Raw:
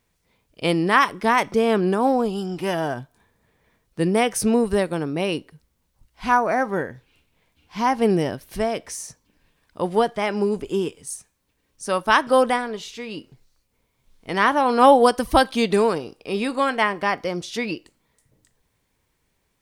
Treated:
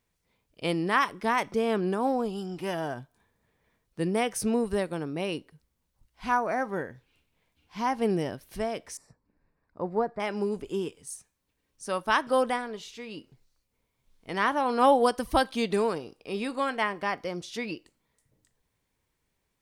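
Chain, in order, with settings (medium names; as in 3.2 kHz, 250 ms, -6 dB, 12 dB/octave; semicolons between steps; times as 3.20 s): 8.97–10.20 s: boxcar filter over 14 samples; trim -7.5 dB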